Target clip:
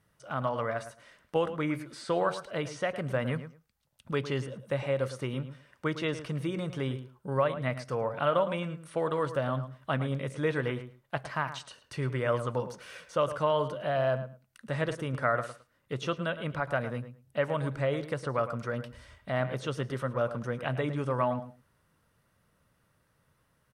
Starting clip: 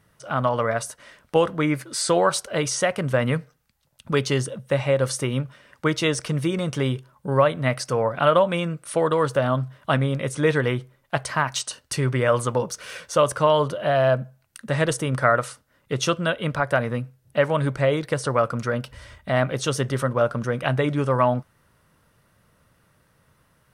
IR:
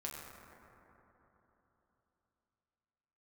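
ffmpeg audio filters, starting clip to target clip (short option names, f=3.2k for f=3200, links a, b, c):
-filter_complex "[0:a]acrossover=split=3700[a][b];[b]acompressor=threshold=-43dB:ratio=4:attack=1:release=60[c];[a][c]amix=inputs=2:normalize=0,asplit=2[d][e];[e]adelay=109,lowpass=f=2.9k:p=1,volume=-11.5dB,asplit=2[f][g];[g]adelay=109,lowpass=f=2.9k:p=1,volume=0.17[h];[f][h]amix=inputs=2:normalize=0[i];[d][i]amix=inputs=2:normalize=0,volume=-9dB"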